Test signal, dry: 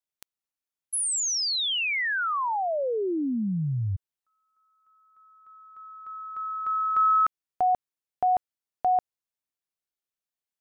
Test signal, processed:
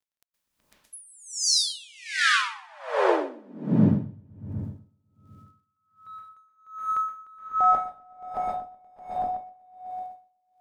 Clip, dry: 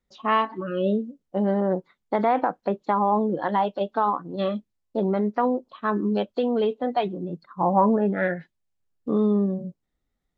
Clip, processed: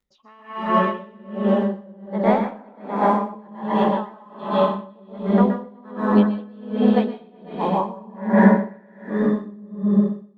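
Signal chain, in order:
notch filter 700 Hz, Q 12
in parallel at −11.5 dB: dead-zone distortion −39.5 dBFS
on the sum: surface crackle 45 per second −55 dBFS
on a send: echo whose low-pass opens from repeat to repeat 125 ms, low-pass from 200 Hz, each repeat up 2 octaves, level 0 dB
on the sum: dense smooth reverb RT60 1 s, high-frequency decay 0.9×, pre-delay 110 ms, DRR −4.5 dB
tremolo with a sine in dB 1.3 Hz, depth 30 dB
level −1.5 dB

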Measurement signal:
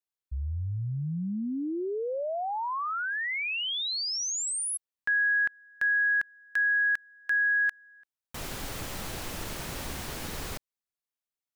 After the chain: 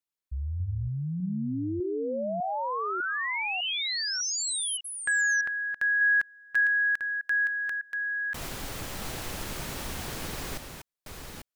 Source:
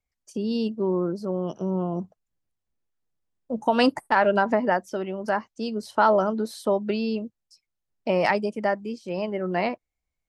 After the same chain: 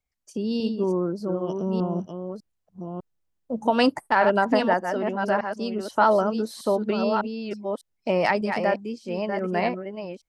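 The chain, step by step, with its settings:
delay that plays each chunk backwards 601 ms, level −6 dB

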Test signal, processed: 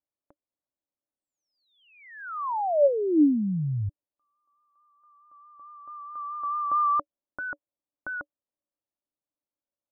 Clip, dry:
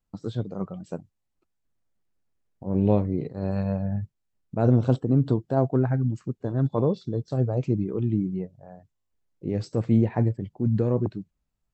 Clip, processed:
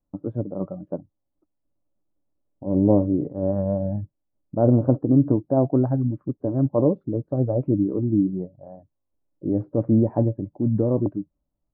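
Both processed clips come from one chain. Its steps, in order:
low-pass filter 1,100 Hz 24 dB per octave
pitch vibrato 4.6 Hz 33 cents
hollow resonant body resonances 300/570 Hz, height 12 dB, ringing for 65 ms

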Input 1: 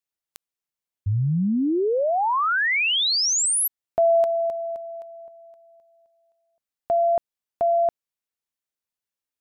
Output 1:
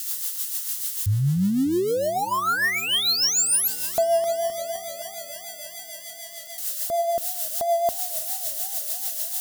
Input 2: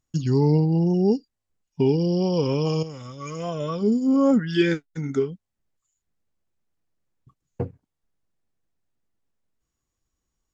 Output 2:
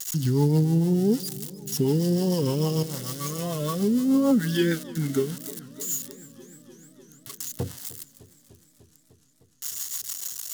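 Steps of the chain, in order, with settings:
spike at every zero crossing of −23 dBFS
parametric band 480 Hz −3 dB 1.2 octaves
notch filter 2,400 Hz, Q 5.6
in parallel at −1 dB: brickwall limiter −22 dBFS
on the sum: rotating-speaker cabinet horn 6.7 Hz
feedback echo with a swinging delay time 302 ms, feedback 77%, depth 128 cents, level −20 dB
level −2 dB

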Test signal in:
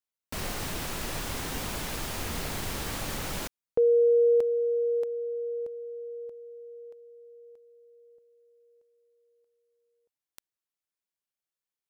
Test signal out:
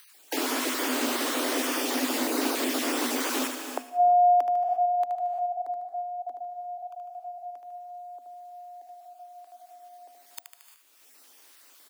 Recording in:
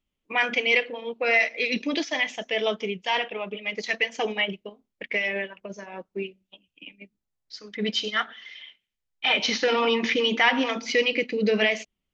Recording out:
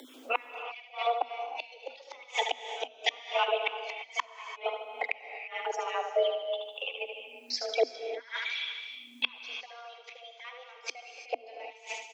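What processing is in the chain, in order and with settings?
time-frequency cells dropped at random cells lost 23%
on a send: repeating echo 75 ms, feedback 44%, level −7 dB
on the sum: upward compression, threshold −43 dBFS
gate with flip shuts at −19 dBFS, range −35 dB
reverb whose tail is shaped and stops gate 370 ms rising, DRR 10.5 dB
frequency shifter +240 Hz
in parallel at +0.5 dB: downward compressor, threshold −43 dBFS
on the sum: level +3.5 dB

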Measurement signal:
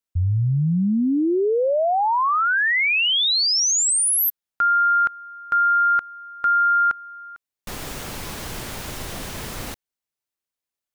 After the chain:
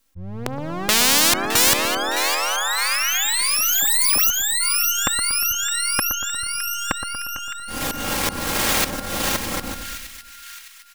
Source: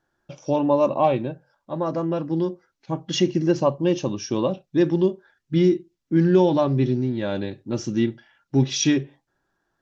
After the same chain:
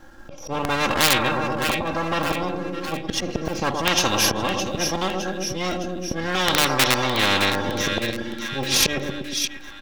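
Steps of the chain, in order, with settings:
gain on one half-wave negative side −7 dB
low-shelf EQ 180 Hz +8 dB
comb filter 3.7 ms, depth 64%
dynamic equaliser 400 Hz, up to +5 dB, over −32 dBFS, Q 1.9
volume swells 720 ms
in parallel at −3 dB: comparator with hysteresis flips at −20.5 dBFS
on the sum: harmonic and percussive parts rebalanced harmonic +3 dB
on a send: echo with a time of its own for lows and highs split 1,600 Hz, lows 118 ms, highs 612 ms, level −11 dB
on the sum: every bin compressed towards the loudest bin 10 to 1
level −1 dB

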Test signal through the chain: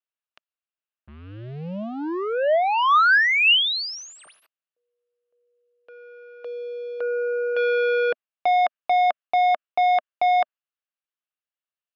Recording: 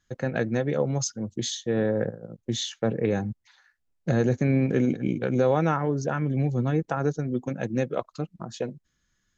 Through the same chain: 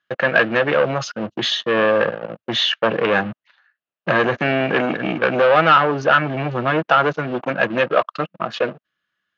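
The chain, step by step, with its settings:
dynamic equaliser 1,600 Hz, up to +6 dB, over −46 dBFS, Q 1
leveller curve on the samples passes 3
in parallel at −1.5 dB: brickwall limiter −19 dBFS
on the sum: loudspeaker in its box 240–4,200 Hz, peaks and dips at 250 Hz −6 dB, 410 Hz −3 dB, 630 Hz +7 dB, 1,200 Hz +7 dB, 1,600 Hz +6 dB, 2,800 Hz +9 dB
level −3 dB

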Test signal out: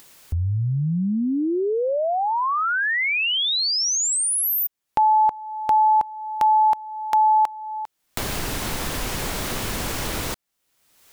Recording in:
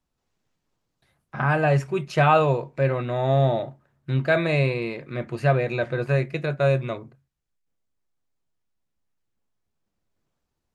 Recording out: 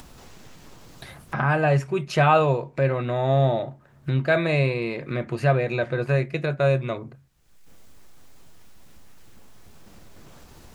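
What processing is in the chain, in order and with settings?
upward compression, threshold −21 dBFS

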